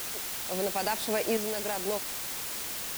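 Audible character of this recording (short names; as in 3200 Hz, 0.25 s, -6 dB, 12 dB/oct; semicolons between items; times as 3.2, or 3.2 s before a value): tremolo saw up 0.73 Hz, depth 65%; a quantiser's noise floor 6-bit, dither triangular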